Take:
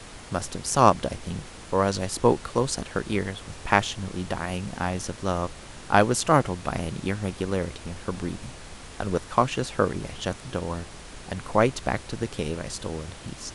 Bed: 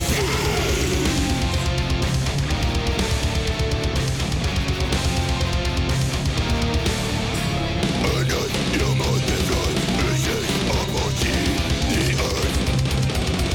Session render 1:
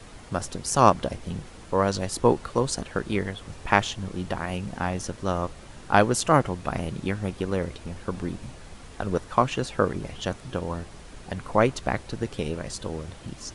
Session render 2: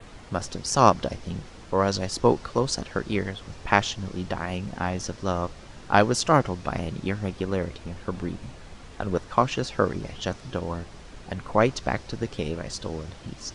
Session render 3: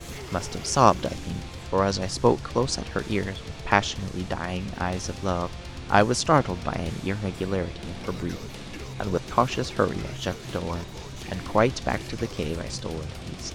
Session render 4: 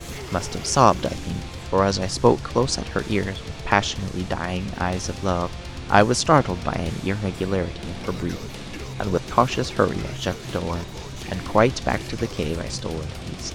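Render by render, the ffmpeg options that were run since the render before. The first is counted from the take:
-af "afftdn=nr=6:nf=-43"
-af "lowpass=6900,adynamicequalizer=threshold=0.00398:dfrequency=5300:dqfactor=2:tfrequency=5300:tqfactor=2:attack=5:release=100:ratio=0.375:range=3:mode=boostabove:tftype=bell"
-filter_complex "[1:a]volume=0.133[s0];[0:a][s0]amix=inputs=2:normalize=0"
-af "volume=1.5,alimiter=limit=0.891:level=0:latency=1"

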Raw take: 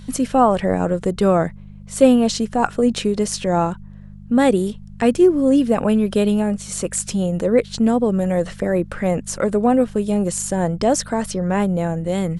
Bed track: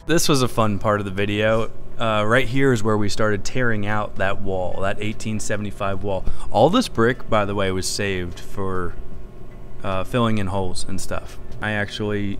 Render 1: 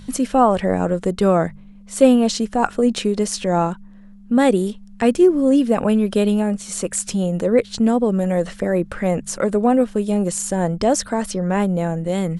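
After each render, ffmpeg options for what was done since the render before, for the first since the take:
-af "bandreject=f=50:t=h:w=4,bandreject=f=100:t=h:w=4,bandreject=f=150:t=h:w=4"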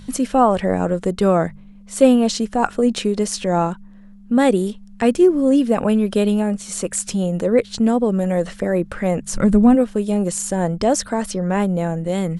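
-filter_complex "[0:a]asplit=3[s0][s1][s2];[s0]afade=t=out:st=9.33:d=0.02[s3];[s1]asubboost=boost=8.5:cutoff=170,afade=t=in:st=9.33:d=0.02,afade=t=out:st=9.74:d=0.02[s4];[s2]afade=t=in:st=9.74:d=0.02[s5];[s3][s4][s5]amix=inputs=3:normalize=0"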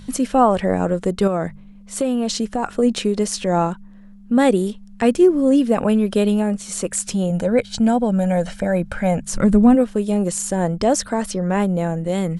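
-filter_complex "[0:a]asettb=1/sr,asplit=3[s0][s1][s2];[s0]atrim=end=1.274[s3];[s1]atrim=start=1.27:end=2.73,asetpts=PTS-STARTPTS,afade=t=in:d=0.004:c=qsin,afade=t=out:st=1.456:d=0.004:c=qsin,acompressor=threshold=0.158:ratio=6:attack=3.2:release=140:knee=1:detection=peak[s4];[s2]atrim=start=2.726[s5];[s3][s4]acrossfade=d=0.004:c1=hsin:c2=qsin[s6];[s6][s5]acrossfade=d=0.004:c1=qsin:c2=hsin,asettb=1/sr,asplit=3[s7][s8][s9];[s7]atrim=end=7.304[s10];[s8]atrim=start=7.3:end=9.24,asetpts=PTS-STARTPTS,afade=t=in:d=0.004:c=qsin,afade=t=out:st=1.936:d=0.004:c=qsin,aecho=1:1:1.3:0.6,atrim=end_sample=85554[s11];[s9]atrim=start=9.236[s12];[s10][s11]acrossfade=d=0.004:c1=hsin:c2=qsin[s13];[s13][s12]acrossfade=d=0.004:c1=qsin:c2=hsin"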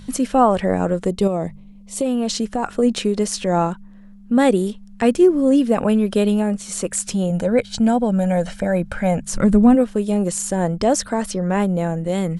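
-filter_complex "[0:a]asettb=1/sr,asplit=3[s0][s1][s2];[s0]atrim=end=1.084[s3];[s1]atrim=start=1.08:end=2.06,asetpts=PTS-STARTPTS,afade=t=in:d=0.004:c=qsin,afade=t=out:st=0.976:d=0.004:c=qsin,equalizer=f=1500:w=2.5:g=-15[s4];[s2]atrim=start=2.056[s5];[s3][s4]acrossfade=d=0.004:c1=hsin:c2=qsin[s6];[s6][s5]acrossfade=d=0.004:c1=qsin:c2=hsin"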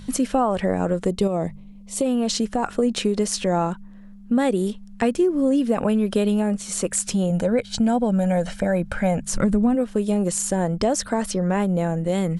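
-af "acompressor=threshold=0.158:ratio=6"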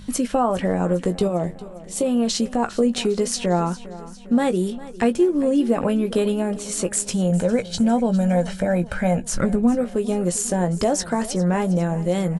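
-filter_complex "[0:a]asplit=2[s0][s1];[s1]adelay=17,volume=0.355[s2];[s0][s2]amix=inputs=2:normalize=0,aecho=1:1:404|808|1212|1616|2020:0.133|0.072|0.0389|0.021|0.0113"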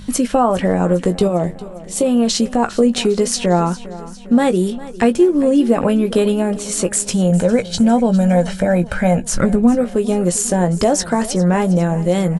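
-af "volume=1.88,alimiter=limit=0.794:level=0:latency=1"

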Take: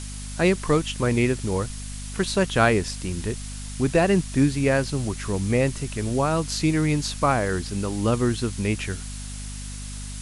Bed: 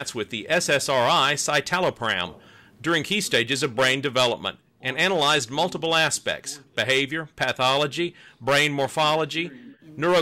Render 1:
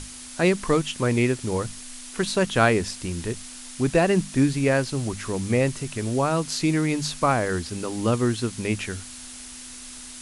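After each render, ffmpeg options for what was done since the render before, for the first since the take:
-af "bandreject=f=50:t=h:w=6,bandreject=f=100:t=h:w=6,bandreject=f=150:t=h:w=6,bandreject=f=200:t=h:w=6"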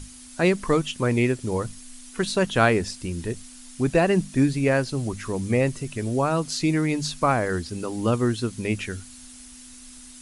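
-af "afftdn=nr=8:nf=-40"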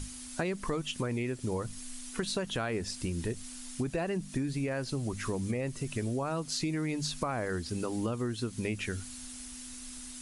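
-af "alimiter=limit=0.188:level=0:latency=1:release=48,acompressor=threshold=0.0316:ratio=6"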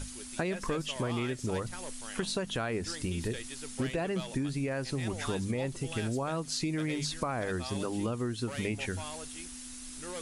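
-filter_complex "[1:a]volume=0.075[s0];[0:a][s0]amix=inputs=2:normalize=0"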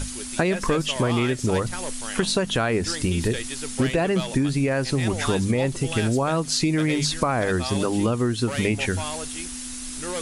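-af "volume=3.35"

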